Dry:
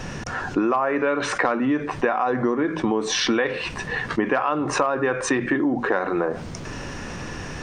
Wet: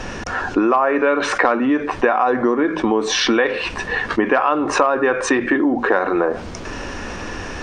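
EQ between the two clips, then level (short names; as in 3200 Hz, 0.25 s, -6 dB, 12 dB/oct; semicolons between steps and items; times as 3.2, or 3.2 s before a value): bell 140 Hz -13.5 dB 0.68 oct; high shelf 8100 Hz -10 dB; notch 2000 Hz, Q 29; +6.0 dB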